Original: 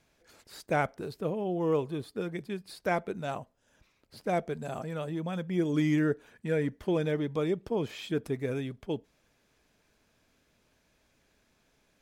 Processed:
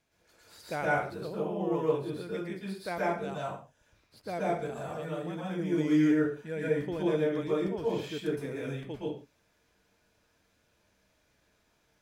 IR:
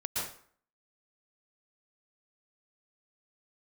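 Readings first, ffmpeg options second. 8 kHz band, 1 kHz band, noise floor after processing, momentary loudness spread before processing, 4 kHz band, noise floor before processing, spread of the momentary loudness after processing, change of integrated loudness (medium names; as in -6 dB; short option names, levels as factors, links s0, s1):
no reading, +0.5 dB, -71 dBFS, 9 LU, -1.0 dB, -71 dBFS, 11 LU, +0.5 dB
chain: -filter_complex "[0:a]lowshelf=f=190:g=-3.5[s0];[1:a]atrim=start_sample=2205,afade=t=out:st=0.35:d=0.01,atrim=end_sample=15876[s1];[s0][s1]afir=irnorm=-1:irlink=0,volume=0.562"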